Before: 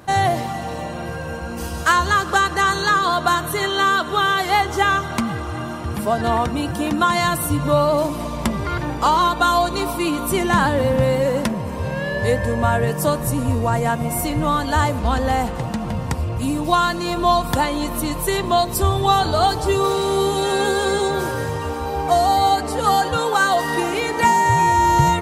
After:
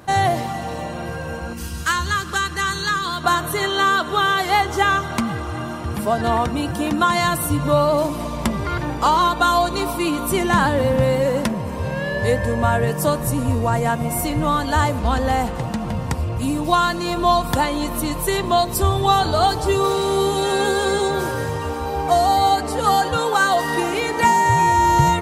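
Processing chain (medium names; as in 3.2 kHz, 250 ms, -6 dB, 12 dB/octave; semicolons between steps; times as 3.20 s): 1.53–3.24 s: peaking EQ 640 Hz -13.5 dB 1.5 oct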